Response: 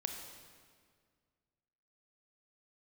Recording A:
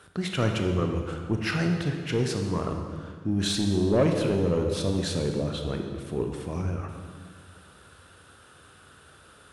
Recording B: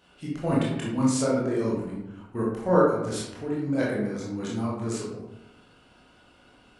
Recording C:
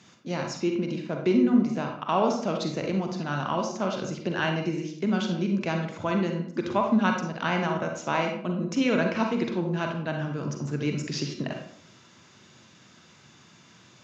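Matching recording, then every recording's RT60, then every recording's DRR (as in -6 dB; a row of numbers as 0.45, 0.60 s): A; 1.9, 0.90, 0.60 s; 3.5, -6.0, 2.5 dB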